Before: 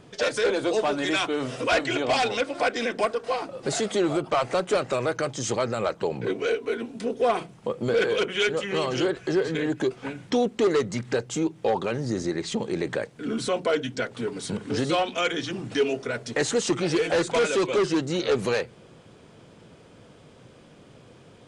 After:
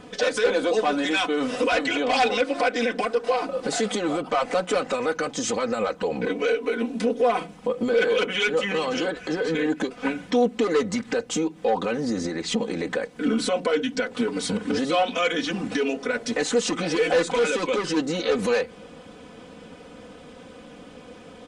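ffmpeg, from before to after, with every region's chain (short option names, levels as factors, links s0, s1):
-filter_complex "[0:a]asettb=1/sr,asplit=3[s0][s1][s2];[s0]atrim=end=17.284[s3];[s1]atrim=start=17.28:end=17.97,asetpts=PTS-STARTPTS,afade=t=in:d=0.004:c=qsin,afade=t=out:st=0.686:d=0.004:c=qsin,acompressor=threshold=0.0447:ratio=4:attack=3.2:release=140:knee=1:detection=peak,bandreject=f=670:w=13[s4];[s2]atrim=start=17.966[s5];[s3][s4]acrossfade=d=0.004:c1=hsin:c2=qsin[s6];[s6][s5]acrossfade=d=0.004:c1=qsin:c2=hsin,alimiter=limit=0.0708:level=0:latency=1:release=148,bass=f=250:g=-2,treble=f=4000:g=-3,aecho=1:1:4:0.84,volume=1.88"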